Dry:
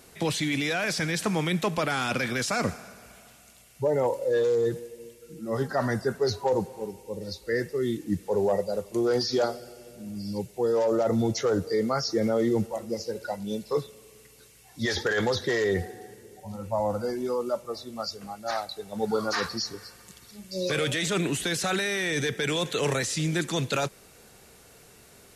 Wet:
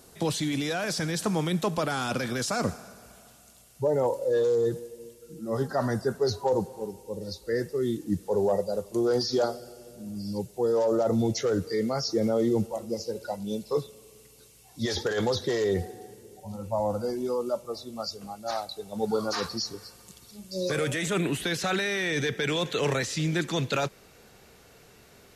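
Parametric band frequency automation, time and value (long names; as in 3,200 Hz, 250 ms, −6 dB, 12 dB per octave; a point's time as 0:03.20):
parametric band −8.5 dB 0.86 octaves
0:11.04 2,200 Hz
0:11.73 590 Hz
0:12.01 1,800 Hz
0:20.40 1,800 Hz
0:21.61 9,500 Hz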